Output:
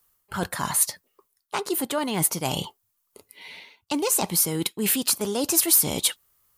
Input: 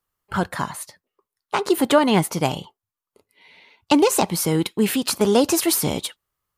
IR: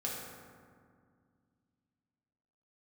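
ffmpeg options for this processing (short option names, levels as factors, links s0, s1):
-af "areverse,acompressor=threshold=0.0224:ratio=4,areverse,crystalizer=i=2:c=0,volume=2"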